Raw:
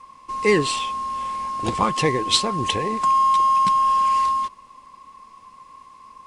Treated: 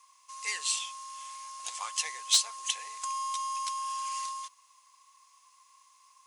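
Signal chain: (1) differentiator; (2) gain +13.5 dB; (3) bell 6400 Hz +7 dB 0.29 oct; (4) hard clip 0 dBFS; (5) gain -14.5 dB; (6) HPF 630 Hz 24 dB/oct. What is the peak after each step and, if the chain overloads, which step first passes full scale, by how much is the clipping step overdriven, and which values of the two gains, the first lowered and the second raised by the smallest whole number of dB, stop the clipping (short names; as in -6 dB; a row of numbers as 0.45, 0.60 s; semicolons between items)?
-7.0, +6.5, +7.5, 0.0, -14.5, -12.0 dBFS; step 2, 7.5 dB; step 2 +5.5 dB, step 5 -6.5 dB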